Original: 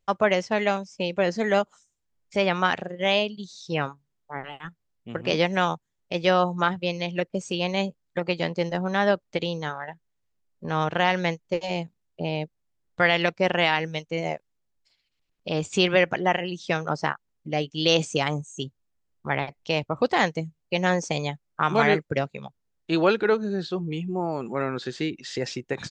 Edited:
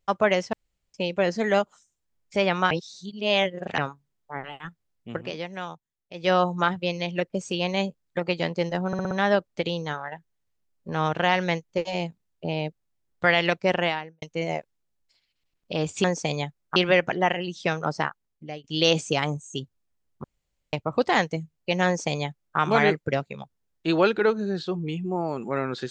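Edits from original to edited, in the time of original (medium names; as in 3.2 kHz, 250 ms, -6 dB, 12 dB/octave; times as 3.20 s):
0.53–0.94 s: room tone
2.71–3.78 s: reverse
5.15–6.33 s: dip -11.5 dB, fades 0.17 s
8.87 s: stutter 0.06 s, 5 plays
13.49–13.98 s: studio fade out
16.88–17.68 s: fade out equal-power, to -19 dB
19.28–19.77 s: room tone
20.90–21.62 s: copy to 15.80 s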